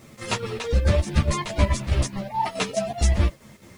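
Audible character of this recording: chopped level 4.7 Hz, depth 60%, duty 70%; a quantiser's noise floor 10-bit, dither none; a shimmering, thickened sound

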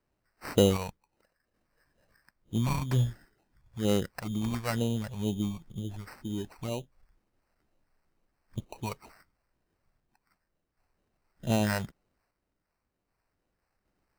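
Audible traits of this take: phasing stages 2, 2.1 Hz, lowest notch 280–2200 Hz; random-step tremolo 1.3 Hz; aliases and images of a low sample rate 3.4 kHz, jitter 0%

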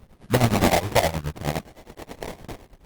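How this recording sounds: tremolo triangle 9.6 Hz, depth 90%; phasing stages 4, 0.81 Hz, lowest notch 260–1100 Hz; aliases and images of a low sample rate 1.4 kHz, jitter 20%; Opus

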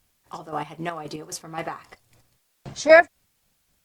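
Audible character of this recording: chopped level 3.8 Hz, depth 60%, duty 40%; a quantiser's noise floor 12-bit, dither triangular; Opus

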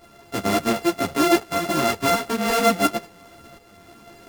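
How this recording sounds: a buzz of ramps at a fixed pitch in blocks of 64 samples; tremolo saw up 1.4 Hz, depth 50%; a shimmering, thickened sound

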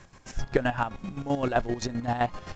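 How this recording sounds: chopped level 7.7 Hz, depth 65%, duty 40%; A-law

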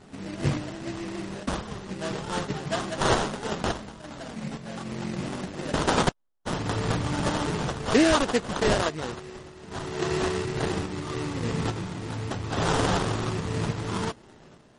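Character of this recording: random-step tremolo; aliases and images of a low sample rate 2.3 kHz, jitter 20%; MP3

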